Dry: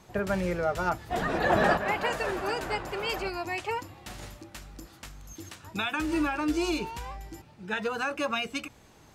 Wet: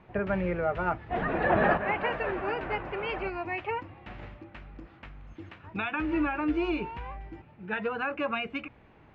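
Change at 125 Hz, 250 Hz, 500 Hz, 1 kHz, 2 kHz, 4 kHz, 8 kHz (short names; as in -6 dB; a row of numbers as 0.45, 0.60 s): 0.0 dB, 0.0 dB, -0.5 dB, -1.0 dB, -0.5 dB, -7.5 dB, under -30 dB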